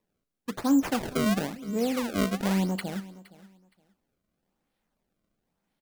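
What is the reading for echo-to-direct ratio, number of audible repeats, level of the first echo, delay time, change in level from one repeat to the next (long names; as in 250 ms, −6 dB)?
−19.5 dB, 2, −19.5 dB, 467 ms, −13.5 dB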